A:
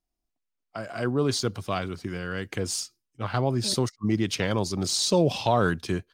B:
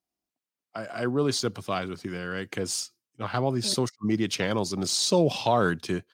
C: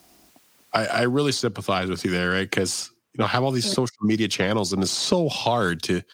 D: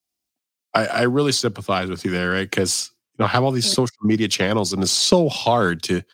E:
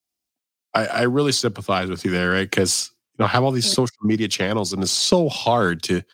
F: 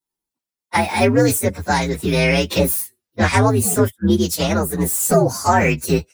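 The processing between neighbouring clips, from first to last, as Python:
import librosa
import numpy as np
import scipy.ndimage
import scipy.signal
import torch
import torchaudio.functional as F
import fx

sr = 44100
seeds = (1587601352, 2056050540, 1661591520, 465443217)

y1 = scipy.signal.sosfilt(scipy.signal.butter(2, 130.0, 'highpass', fs=sr, output='sos'), x)
y2 = fx.band_squash(y1, sr, depth_pct=100)
y2 = F.gain(torch.from_numpy(y2), 3.5).numpy()
y3 = fx.band_widen(y2, sr, depth_pct=100)
y3 = F.gain(torch.from_numpy(y3), 3.0).numpy()
y4 = fx.rider(y3, sr, range_db=10, speed_s=2.0)
y4 = F.gain(torch.from_numpy(y4), -1.0).numpy()
y5 = fx.partial_stretch(y4, sr, pct=124)
y5 = F.gain(torch.from_numpy(y5), 6.0).numpy()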